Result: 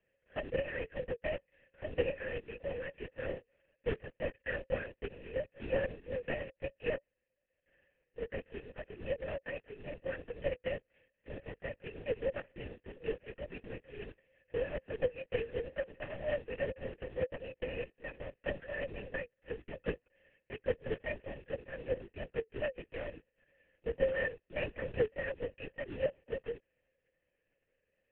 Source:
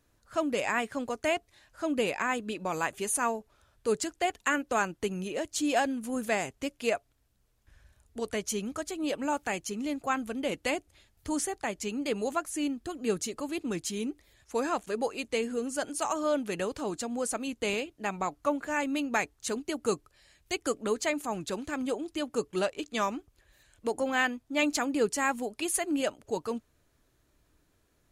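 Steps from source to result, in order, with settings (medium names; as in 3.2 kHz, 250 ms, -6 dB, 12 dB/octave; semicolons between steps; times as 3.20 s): CVSD coder 16 kbps; high-pass 170 Hz 6 dB/octave; in parallel at -5.5 dB: sample-and-hold 36×; on the sum: vowel filter e; LPC vocoder at 8 kHz whisper; trim +2 dB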